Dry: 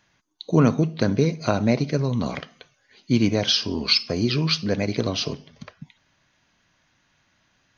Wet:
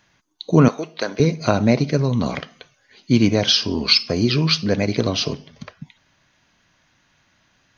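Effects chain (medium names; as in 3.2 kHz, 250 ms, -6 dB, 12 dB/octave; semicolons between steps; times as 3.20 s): 0.68–1.20 s: high-pass 570 Hz 12 dB/octave; trim +4 dB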